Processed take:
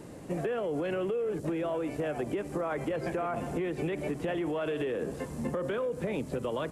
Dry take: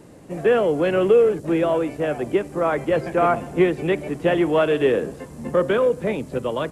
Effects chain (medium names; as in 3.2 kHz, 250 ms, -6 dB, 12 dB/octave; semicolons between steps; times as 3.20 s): peak limiter -18.5 dBFS, peak gain reduction 11.5 dB; compression, threshold -29 dBFS, peak gain reduction 7.5 dB